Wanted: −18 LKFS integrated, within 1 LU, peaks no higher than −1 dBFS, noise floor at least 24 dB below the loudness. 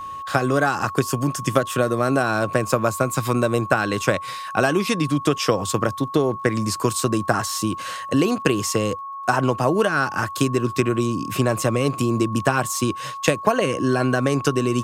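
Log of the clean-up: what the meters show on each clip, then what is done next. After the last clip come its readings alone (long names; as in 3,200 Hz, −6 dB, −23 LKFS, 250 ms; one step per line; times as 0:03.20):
crackle rate 21 per second; interfering tone 1,100 Hz; level of the tone −30 dBFS; integrated loudness −21.5 LKFS; sample peak −3.0 dBFS; target loudness −18.0 LKFS
→ click removal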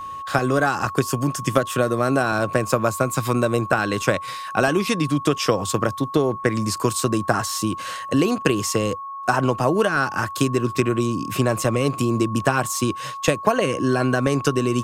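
crackle rate 0.20 per second; interfering tone 1,100 Hz; level of the tone −30 dBFS
→ notch filter 1,100 Hz, Q 30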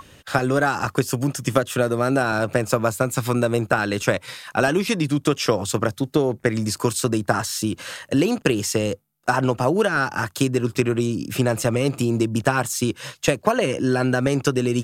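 interfering tone none found; integrated loudness −22.0 LKFS; sample peak −3.0 dBFS; target loudness −18.0 LKFS
→ level +4 dB
brickwall limiter −1 dBFS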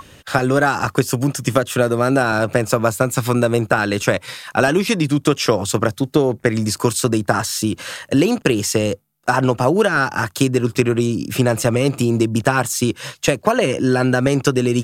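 integrated loudness −18.0 LKFS; sample peak −1.0 dBFS; background noise floor −49 dBFS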